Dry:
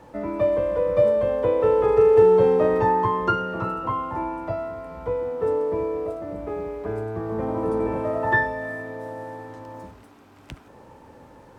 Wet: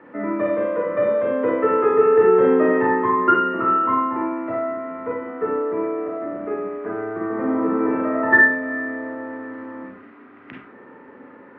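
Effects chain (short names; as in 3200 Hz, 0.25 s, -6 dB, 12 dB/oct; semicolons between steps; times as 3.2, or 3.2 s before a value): speaker cabinet 230–2500 Hz, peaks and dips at 260 Hz +9 dB, 390 Hz +5 dB, 570 Hz -3 dB, 820 Hz -6 dB, 1300 Hz +7 dB, 1900 Hz +9 dB; Schroeder reverb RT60 0.33 s, combs from 31 ms, DRR -0.5 dB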